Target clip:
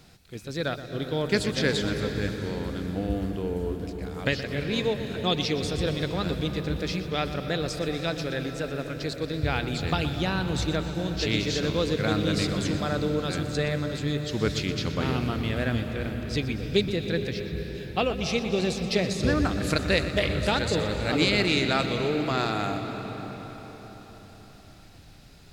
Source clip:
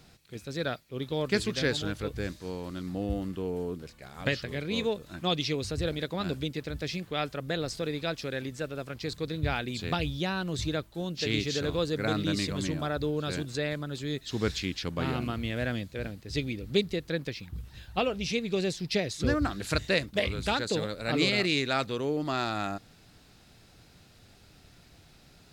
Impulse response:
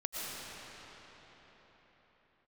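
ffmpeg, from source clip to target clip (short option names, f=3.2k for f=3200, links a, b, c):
-filter_complex "[0:a]asplit=2[a][b];[1:a]atrim=start_sample=2205,lowshelf=f=150:g=11,adelay=122[c];[b][c]afir=irnorm=-1:irlink=0,volume=-11dB[d];[a][d]amix=inputs=2:normalize=0,volume=2.5dB"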